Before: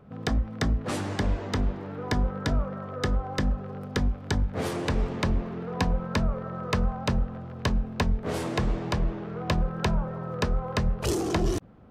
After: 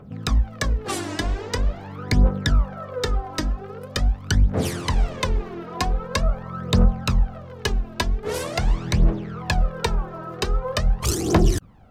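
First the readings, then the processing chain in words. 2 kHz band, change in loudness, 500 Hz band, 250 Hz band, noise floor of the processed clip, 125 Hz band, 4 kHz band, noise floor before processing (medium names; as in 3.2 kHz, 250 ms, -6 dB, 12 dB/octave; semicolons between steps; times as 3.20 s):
+4.5 dB, +5.0 dB, +3.0 dB, +2.5 dB, -39 dBFS, +5.0 dB, +7.0 dB, -39 dBFS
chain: treble shelf 3.5 kHz +7.5 dB; phaser 0.44 Hz, delay 3.2 ms, feedback 68%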